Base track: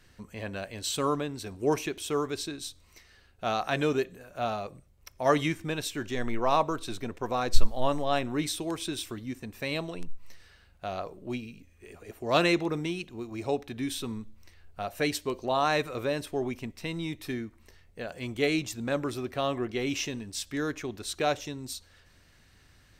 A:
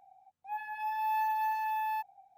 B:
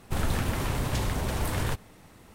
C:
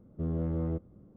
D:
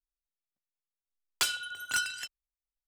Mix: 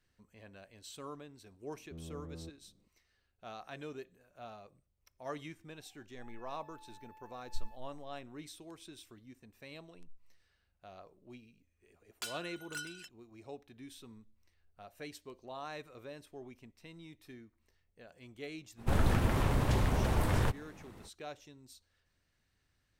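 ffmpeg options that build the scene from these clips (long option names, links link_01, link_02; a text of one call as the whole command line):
ffmpeg -i bed.wav -i cue0.wav -i cue1.wav -i cue2.wav -i cue3.wav -filter_complex "[0:a]volume=-18dB[link_01];[1:a]acompressor=threshold=-45dB:ratio=6:attack=3.2:release=140:knee=1:detection=peak[link_02];[2:a]highshelf=frequency=2800:gain=-8.5[link_03];[3:a]atrim=end=1.16,asetpts=PTS-STARTPTS,volume=-15.5dB,afade=type=in:duration=0.004:curve=hsin,afade=type=out:start_time=1.156:duration=0.004:curve=hsin,adelay=1720[link_04];[link_02]atrim=end=2.37,asetpts=PTS-STARTPTS,volume=-13.5dB,afade=type=in:duration=0.004:curve=hsin,afade=type=out:start_time=2.366:duration=0.004:curve=hsin,adelay=5740[link_05];[4:a]atrim=end=2.87,asetpts=PTS-STARTPTS,volume=-13dB,afade=type=in:duration=0.004:curve=hsin,afade=type=out:start_time=2.866:duration=0.004:curve=hsin,adelay=10810[link_06];[link_03]atrim=end=2.34,asetpts=PTS-STARTPTS,volume=-0.5dB,afade=type=in:duration=0.05,afade=type=out:start_time=2.29:duration=0.05,adelay=827316S[link_07];[link_01][link_04][link_05][link_06][link_07]amix=inputs=5:normalize=0" out.wav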